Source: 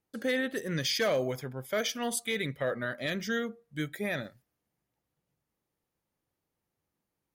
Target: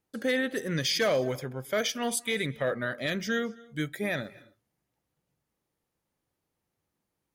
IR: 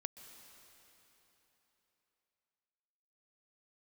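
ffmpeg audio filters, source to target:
-filter_complex "[0:a]asplit=2[a][b];[1:a]atrim=start_sample=2205,atrim=end_sample=6615,asetrate=24255,aresample=44100[c];[b][c]afir=irnorm=-1:irlink=0,volume=-1dB[d];[a][d]amix=inputs=2:normalize=0,volume=-3dB"

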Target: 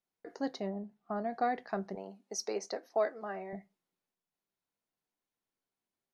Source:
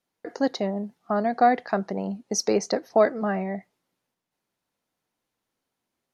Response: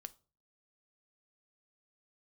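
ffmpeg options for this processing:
-filter_complex "[0:a]asettb=1/sr,asplit=3[a][b][c];[a]atrim=end=0.694[d];[b]atrim=start=0.69:end=1.32,asetpts=PTS-STARTPTS,afade=t=in:d=0.004:c=qsin,afade=t=out:st=0.626:d=0.004:c=qsin,highshelf=f=4.5k:g=-12[e];[c]atrim=start=1.316[f];[d][e]acrossfade=d=0.004:c1=hsin:c2=qsin[g];[g][f]acrossfade=d=0.004:c1=qsin:c2=hsin,asettb=1/sr,asplit=3[h][i][j];[h]atrim=end=1.954[k];[i]atrim=start=1.95:end=3.53,asetpts=PTS-STARTPTS,afade=t=in:d=0.004:c=qsin,afade=t=out:st=1.576:d=0.004:c=qsin,highpass=380[l];[j]atrim=start=3.526[m];[k][l]acrossfade=d=0.004:c1=hsin:c2=qsin[n];[n][m]acrossfade=d=0.004:c1=qsin:c2=hsin[o];[1:a]atrim=start_sample=2205,asetrate=83790,aresample=44100[p];[o][p]afir=irnorm=-1:irlink=0"

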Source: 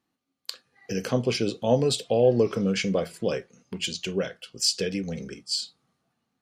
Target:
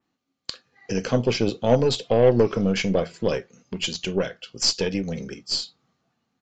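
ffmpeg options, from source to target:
-af "aeval=exprs='0.355*(cos(1*acos(clip(val(0)/0.355,-1,1)))-cos(1*PI/2))+0.0224*(cos(6*acos(clip(val(0)/0.355,-1,1)))-cos(6*PI/2))':c=same,aresample=16000,aresample=44100,adynamicequalizer=threshold=0.00794:dfrequency=3500:dqfactor=0.7:tfrequency=3500:tqfactor=0.7:attack=5:release=100:ratio=0.375:range=2:mode=cutabove:tftype=highshelf,volume=3dB"

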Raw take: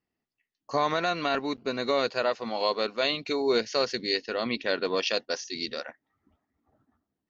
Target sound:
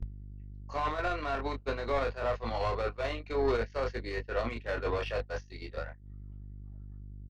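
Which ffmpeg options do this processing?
-filter_complex "[0:a]acrossover=split=140|480|2200[a][b][c][d];[d]acompressor=threshold=-45dB:ratio=16[e];[a][b][c][e]amix=inputs=4:normalize=0,asplit=2[f][g];[g]highpass=f=720:p=1,volume=18dB,asoftclip=type=tanh:threshold=-14dB[h];[f][h]amix=inputs=2:normalize=0,lowpass=f=2.5k:p=1,volume=-6dB,aeval=exprs='val(0)+0.0158*(sin(2*PI*50*n/s)+sin(2*PI*2*50*n/s)/2+sin(2*PI*3*50*n/s)/3+sin(2*PI*4*50*n/s)/4+sin(2*PI*5*50*n/s)/5)':c=same,acompressor=mode=upward:threshold=-32dB:ratio=2.5,lowshelf=f=120:t=q:w=3:g=7.5,asplit=2[i][j];[j]adelay=26,volume=-6dB[k];[i][k]amix=inputs=2:normalize=0,alimiter=limit=-19.5dB:level=0:latency=1:release=12,agate=range=-42dB:threshold=-25dB:ratio=16:detection=peak"

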